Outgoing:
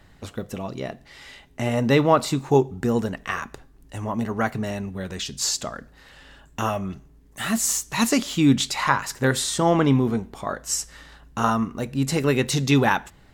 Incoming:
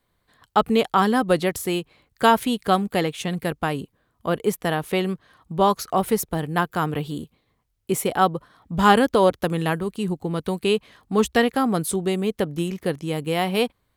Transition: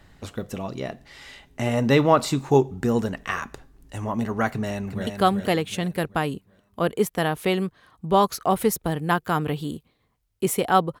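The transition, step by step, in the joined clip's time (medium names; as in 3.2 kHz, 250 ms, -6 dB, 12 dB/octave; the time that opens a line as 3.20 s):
outgoing
4.49–5.07 s: echo throw 380 ms, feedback 40%, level -6 dB
5.07 s: go over to incoming from 2.54 s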